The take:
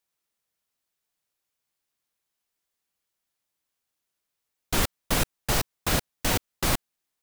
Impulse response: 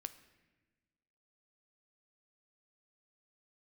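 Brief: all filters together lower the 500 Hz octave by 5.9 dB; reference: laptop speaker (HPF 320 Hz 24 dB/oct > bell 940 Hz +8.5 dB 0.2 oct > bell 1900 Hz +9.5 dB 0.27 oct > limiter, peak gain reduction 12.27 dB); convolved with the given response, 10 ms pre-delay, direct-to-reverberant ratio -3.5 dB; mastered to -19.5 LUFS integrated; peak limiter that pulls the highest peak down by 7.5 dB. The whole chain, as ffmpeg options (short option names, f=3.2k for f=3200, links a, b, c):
-filter_complex "[0:a]equalizer=f=500:t=o:g=-7.5,alimiter=limit=-18dB:level=0:latency=1,asplit=2[a][b];[1:a]atrim=start_sample=2205,adelay=10[c];[b][c]afir=irnorm=-1:irlink=0,volume=7dB[d];[a][d]amix=inputs=2:normalize=0,highpass=f=320:w=0.5412,highpass=f=320:w=1.3066,equalizer=f=940:t=o:w=0.2:g=8.5,equalizer=f=1.9k:t=o:w=0.27:g=9.5,volume=15.5dB,alimiter=limit=-8dB:level=0:latency=1"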